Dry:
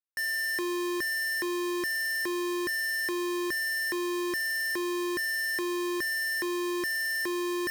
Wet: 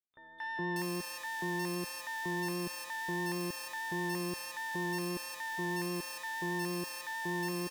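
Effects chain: three bands offset in time lows, mids, highs 230/590 ms, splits 1.1/3.6 kHz; vibrato 6.3 Hz 11 cents; harmony voices -12 st -2 dB, +12 st -18 dB; trim -8 dB

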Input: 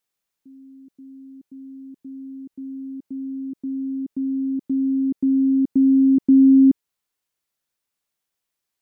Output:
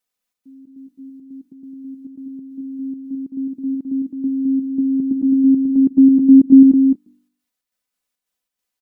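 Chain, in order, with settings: comb 4 ms, depth 71%; de-hum 49.15 Hz, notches 7; trance gate "xxx.xx.x" 138 bpm -24 dB; on a send: delay 213 ms -3.5 dB; on the sum: trim -1.5 dB

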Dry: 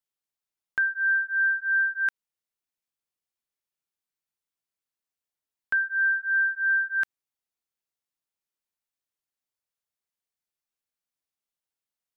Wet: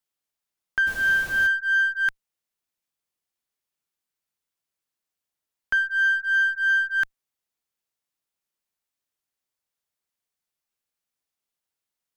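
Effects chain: 0.86–1.46 s: added noise pink -42 dBFS; in parallel at -5.5 dB: one-sided clip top -35 dBFS

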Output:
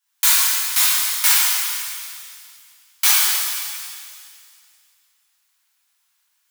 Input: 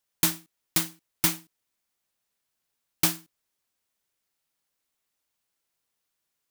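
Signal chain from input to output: high-pass 930 Hz 24 dB/octave; pitch-shifted reverb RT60 2.1 s, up +7 st, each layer -8 dB, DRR -11.5 dB; trim +1.5 dB

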